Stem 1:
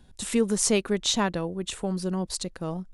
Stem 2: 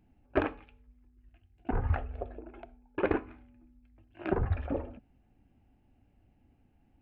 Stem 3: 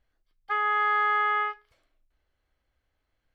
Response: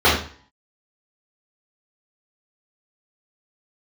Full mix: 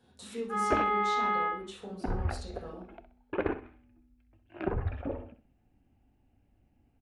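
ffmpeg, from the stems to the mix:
-filter_complex "[0:a]highpass=140,acompressor=threshold=-45dB:ratio=2,volume=-10dB,asplit=3[a][b][c];[b]volume=-17dB[d];[c]volume=-17dB[e];[1:a]adelay=350,volume=-2.5dB,asplit=2[f][g];[g]volume=-11.5dB[h];[2:a]volume=-16dB,asplit=2[i][j];[j]volume=-16dB[k];[3:a]atrim=start_sample=2205[l];[d][k]amix=inputs=2:normalize=0[m];[m][l]afir=irnorm=-1:irlink=0[n];[e][h]amix=inputs=2:normalize=0,aecho=0:1:64|128|192|256:1|0.28|0.0784|0.022[o];[a][f][i][n][o]amix=inputs=5:normalize=0"

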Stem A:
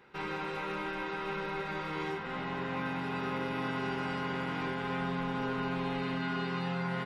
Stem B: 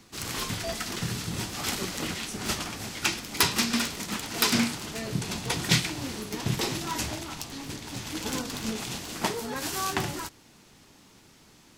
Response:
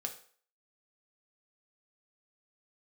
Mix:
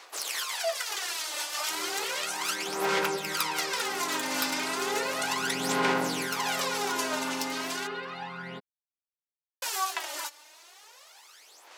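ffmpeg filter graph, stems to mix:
-filter_complex "[0:a]dynaudnorm=f=180:g=13:m=6dB,adelay=1550,volume=-3.5dB[a];[1:a]highpass=f=550:w=0.5412,highpass=f=550:w=1.3066,acompressor=threshold=-34dB:ratio=6,volume=2.5dB,asplit=3[b][c][d];[b]atrim=end=7.87,asetpts=PTS-STARTPTS,afade=t=out:st=7.866:d=0.004:c=hsin[e];[c]atrim=start=7.87:end=9.62,asetpts=PTS-STARTPTS,volume=0[f];[d]atrim=start=9.62,asetpts=PTS-STARTPTS,afade=t=in:d=0.004:c=hsin[g];[e][f][g]concat=n=3:v=0:a=1[h];[a][h]amix=inputs=2:normalize=0,highpass=300,aphaser=in_gain=1:out_gain=1:delay=3.4:decay=0.66:speed=0.34:type=sinusoidal"

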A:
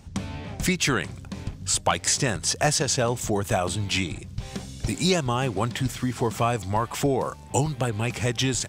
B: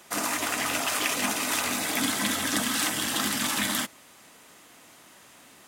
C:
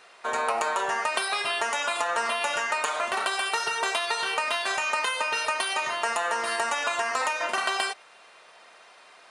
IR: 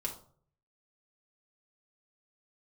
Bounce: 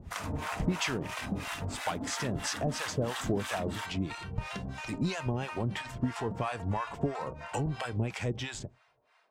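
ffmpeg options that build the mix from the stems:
-filter_complex "[0:a]volume=1dB,asplit=2[a][b];[b]volume=-22.5dB[c];[1:a]acompressor=threshold=-30dB:ratio=6,volume=0dB[d];[2:a]volume=-14.5dB,asplit=2[e][f];[f]volume=-3.5dB[g];[a][e]amix=inputs=2:normalize=0,bandreject=f=1.2k:w=17,acompressor=threshold=-24dB:ratio=6,volume=0dB[h];[3:a]atrim=start_sample=2205[i];[c][g]amix=inputs=2:normalize=0[j];[j][i]afir=irnorm=-1:irlink=0[k];[d][h][k]amix=inputs=3:normalize=0,lowpass=f=2.4k:p=1,acrossover=split=670[l][m];[l]aeval=exprs='val(0)*(1-1/2+1/2*cos(2*PI*3*n/s))':c=same[n];[m]aeval=exprs='val(0)*(1-1/2-1/2*cos(2*PI*3*n/s))':c=same[o];[n][o]amix=inputs=2:normalize=0"

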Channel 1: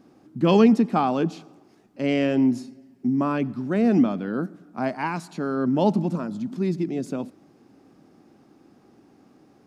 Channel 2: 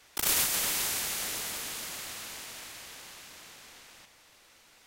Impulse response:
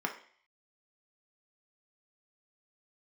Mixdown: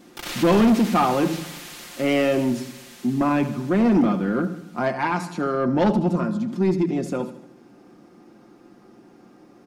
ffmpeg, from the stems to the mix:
-filter_complex "[0:a]lowshelf=f=240:g=4,volume=1dB,asplit=3[a][b][c];[b]volume=-10dB[d];[c]volume=-12dB[e];[1:a]acrossover=split=5000[f][g];[g]acompressor=threshold=-42dB:ratio=4:attack=1:release=60[h];[f][h]amix=inputs=2:normalize=0,volume=-0.5dB[i];[2:a]atrim=start_sample=2205[j];[d][j]afir=irnorm=-1:irlink=0[k];[e]aecho=0:1:76|152|228|304|380|456|532|608:1|0.53|0.281|0.149|0.0789|0.0418|0.0222|0.0117[l];[a][i][k][l]amix=inputs=4:normalize=0,aecho=1:1:5.7:0.56,asoftclip=type=tanh:threshold=-12.5dB"

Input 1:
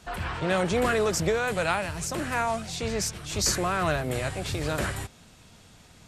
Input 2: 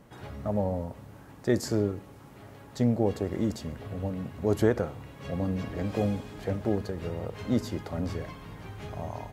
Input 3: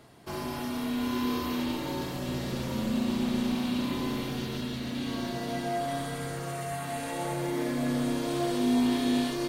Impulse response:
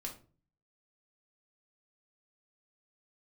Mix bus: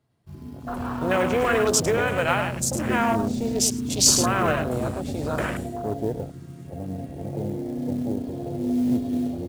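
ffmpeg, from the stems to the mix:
-filter_complex "[0:a]bass=f=250:g=-6,treble=f=4k:g=7,adelay=600,volume=3dB,asplit=2[a][b];[b]volume=-6.5dB[c];[1:a]adelay=1400,volume=-4dB,asplit=2[d][e];[e]volume=-12.5dB[f];[2:a]equalizer=f=100:t=o:w=1.6:g=12.5,volume=-5.5dB,asplit=2[g][h];[h]volume=-3dB[i];[c][f][i]amix=inputs=3:normalize=0,aecho=0:1:105:1[j];[a][d][g][j]amix=inputs=4:normalize=0,afwtdn=0.0447,acrusher=bits=7:mode=log:mix=0:aa=0.000001"

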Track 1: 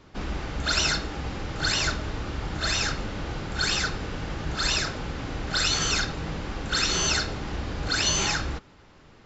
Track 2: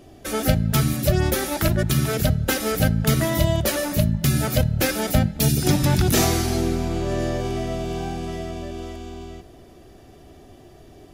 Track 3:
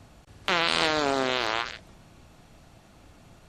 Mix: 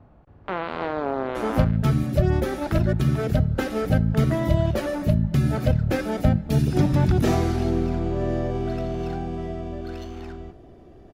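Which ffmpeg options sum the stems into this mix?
-filter_complex "[0:a]adynamicsmooth=sensitivity=1.5:basefreq=1.2k,adelay=1950,volume=-19dB[a];[1:a]lowpass=f=1k:p=1,adelay=1100,volume=0dB[b];[2:a]lowpass=1.1k,volume=0.5dB[c];[a][b][c]amix=inputs=3:normalize=0"

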